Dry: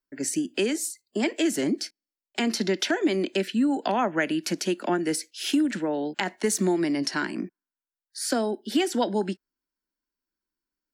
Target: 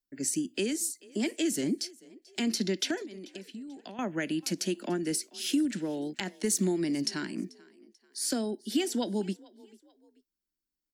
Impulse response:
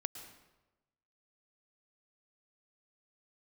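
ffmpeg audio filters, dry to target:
-filter_complex "[0:a]equalizer=f=1000:w=0.47:g=-12.5,asettb=1/sr,asplit=3[s0][s1][s2];[s0]atrim=end=3.024[s3];[s1]atrim=start=3.02:end=3.99,asetpts=PTS-STARTPTS,afade=t=in:d=0.004:c=qsin,afade=t=out:st=0.966:d=0.004:c=qsin,acompressor=threshold=0.01:ratio=16[s4];[s2]atrim=start=3.986[s5];[s3][s4]acrossfade=d=0.004:c1=hsin:c2=qsin[s6];[s6][s5]acrossfade=d=0.004:c1=qsin:c2=hsin,asplit=2[s7][s8];[s8]asplit=2[s9][s10];[s9]adelay=438,afreqshift=32,volume=0.0668[s11];[s10]adelay=876,afreqshift=64,volume=0.0254[s12];[s11][s12]amix=inputs=2:normalize=0[s13];[s7][s13]amix=inputs=2:normalize=0"

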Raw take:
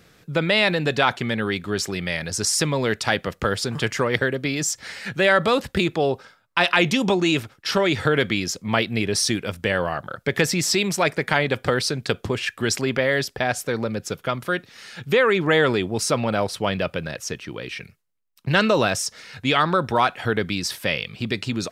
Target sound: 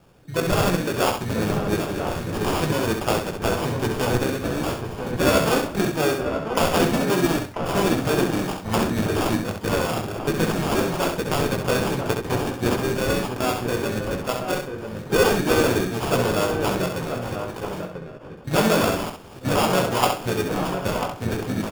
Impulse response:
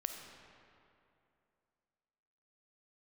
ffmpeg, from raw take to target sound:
-filter_complex "[0:a]flanger=delay=16:depth=3.3:speed=0.25,acrusher=samples=22:mix=1:aa=0.000001,asplit=2[s0][s1];[s1]adelay=991.3,volume=0.501,highshelf=f=4000:g=-22.3[s2];[s0][s2]amix=inputs=2:normalize=0,asplit=4[s3][s4][s5][s6];[s4]asetrate=33038,aresample=44100,atempo=1.33484,volume=0.316[s7];[s5]asetrate=35002,aresample=44100,atempo=1.25992,volume=0.398[s8];[s6]asetrate=88200,aresample=44100,atempo=0.5,volume=0.158[s9];[s3][s7][s8][s9]amix=inputs=4:normalize=0,asplit=2[s10][s11];[s11]aecho=0:1:66|132|198:0.501|0.115|0.0265[s12];[s10][s12]amix=inputs=2:normalize=0"

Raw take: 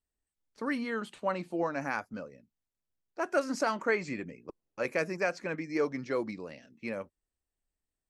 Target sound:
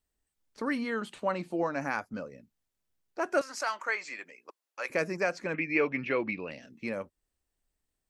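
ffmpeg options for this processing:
-filter_complex "[0:a]asettb=1/sr,asplit=3[s0][s1][s2];[s0]atrim=end=3.414[s3];[s1]atrim=start=3.41:end=4.9,asetpts=PTS-STARTPTS,afade=t=in:d=0.004:c=qsin,afade=t=out:st=1.486:d=0.004:c=qsin,highpass=930[s4];[s2]atrim=start=4.896[s5];[s3][s4]acrossfade=d=0.004:c1=hsin:c2=qsin[s6];[s6][s5]acrossfade=d=0.004:c1=qsin:c2=hsin,asplit=2[s7][s8];[s8]acompressor=threshold=0.00562:ratio=6,volume=0.891[s9];[s7][s9]amix=inputs=2:normalize=0,asettb=1/sr,asplit=3[s10][s11][s12];[s10]atrim=end=5.544[s13];[s11]atrim=start=5.54:end=6.51,asetpts=PTS-STARTPTS,afade=t=in:d=0.004:c=qsin,afade=t=out:st=0.966:d=0.004:c=qsin,lowpass=f=2600:t=q:w=8.1[s14];[s12]atrim=start=6.506[s15];[s13][s14]acrossfade=d=0.004:c1=hsin:c2=qsin[s16];[s16][s15]acrossfade=d=0.004:c1=qsin:c2=hsin"

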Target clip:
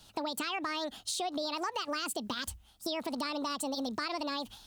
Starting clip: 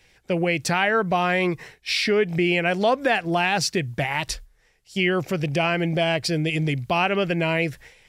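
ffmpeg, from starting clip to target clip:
-af "acompressor=threshold=0.0178:ratio=4,asetrate=76440,aresample=44100"

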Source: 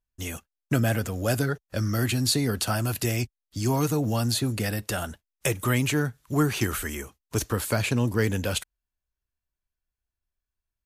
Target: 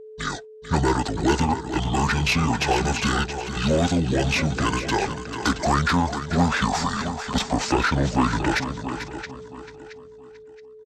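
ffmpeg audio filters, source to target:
-filter_complex "[0:a]asplit=2[s0][s1];[s1]aecho=0:1:674|1348|2022:0.211|0.0592|0.0166[s2];[s0][s2]amix=inputs=2:normalize=0,asplit=2[s3][s4];[s4]highpass=f=720:p=1,volume=7.94,asoftclip=type=tanh:threshold=0.398[s5];[s3][s5]amix=inputs=2:normalize=0,lowpass=f=3900:p=1,volume=0.501,aeval=exprs='val(0)+0.0112*sin(2*PI*750*n/s)':c=same,asetrate=25476,aresample=44100,atempo=1.73107,asplit=2[s6][s7];[s7]aecho=0:1:442:0.299[s8];[s6][s8]amix=inputs=2:normalize=0"

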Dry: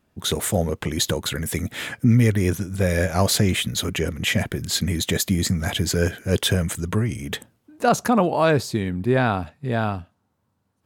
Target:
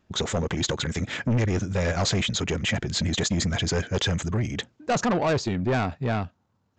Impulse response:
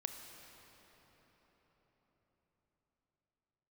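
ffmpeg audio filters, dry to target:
-af "atempo=1.6,aresample=16000,asoftclip=type=tanh:threshold=0.1,aresample=44100,volume=1.12"

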